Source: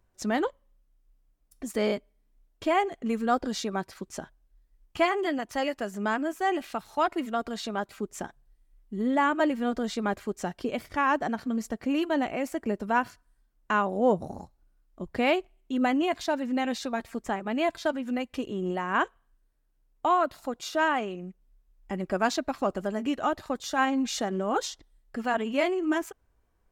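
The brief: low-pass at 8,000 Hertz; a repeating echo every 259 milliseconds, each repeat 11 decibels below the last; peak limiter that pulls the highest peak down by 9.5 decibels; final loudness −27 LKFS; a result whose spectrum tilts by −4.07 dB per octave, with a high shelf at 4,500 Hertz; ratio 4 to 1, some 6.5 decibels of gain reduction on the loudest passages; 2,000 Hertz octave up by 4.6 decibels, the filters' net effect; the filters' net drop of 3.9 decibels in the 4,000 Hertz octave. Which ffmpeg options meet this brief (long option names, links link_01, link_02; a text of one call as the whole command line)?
ffmpeg -i in.wav -af "lowpass=8000,equalizer=frequency=2000:width_type=o:gain=8.5,equalizer=frequency=4000:width_type=o:gain=-5.5,highshelf=frequency=4500:gain=-8.5,acompressor=threshold=-25dB:ratio=4,alimiter=limit=-24dB:level=0:latency=1,aecho=1:1:259|518|777:0.282|0.0789|0.0221,volume=7.5dB" out.wav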